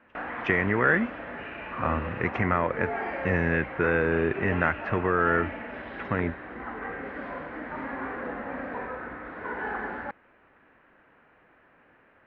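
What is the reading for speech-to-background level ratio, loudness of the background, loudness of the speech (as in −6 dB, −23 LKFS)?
8.5 dB, −35.5 LKFS, −27.0 LKFS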